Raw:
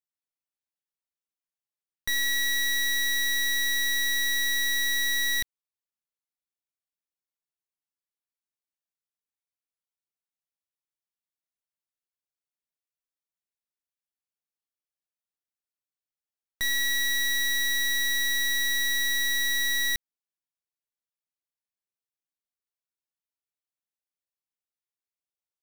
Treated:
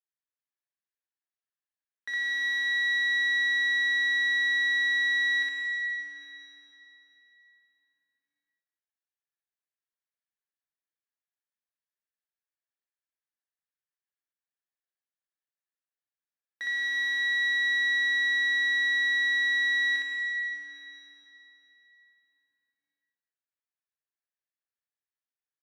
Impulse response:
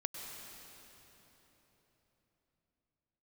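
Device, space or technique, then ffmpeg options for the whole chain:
station announcement: -filter_complex "[0:a]highpass=360,lowpass=3800,equalizer=frequency=1700:width_type=o:width=0.41:gain=10.5,aecho=1:1:61.22|233.2:1|0.251[link_01];[1:a]atrim=start_sample=2205[link_02];[link_01][link_02]afir=irnorm=-1:irlink=0,volume=-8.5dB"

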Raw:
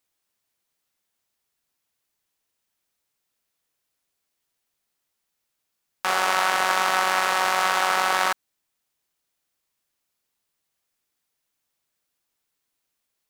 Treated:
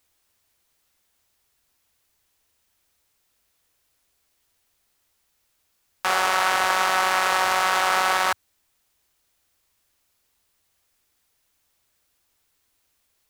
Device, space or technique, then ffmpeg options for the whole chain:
car stereo with a boomy subwoofer: -af "lowshelf=frequency=110:width_type=q:width=1.5:gain=6.5,alimiter=limit=-16dB:level=0:latency=1:release=29,volume=8.5dB"

